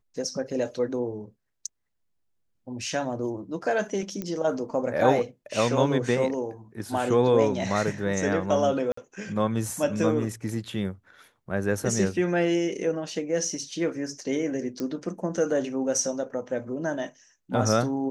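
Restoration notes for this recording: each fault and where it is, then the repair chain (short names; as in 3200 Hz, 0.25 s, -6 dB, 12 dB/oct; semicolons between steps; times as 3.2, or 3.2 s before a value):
4.22 pop -18 dBFS
8.92–8.97 gap 54 ms
14.8 pop -19 dBFS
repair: de-click; interpolate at 8.92, 54 ms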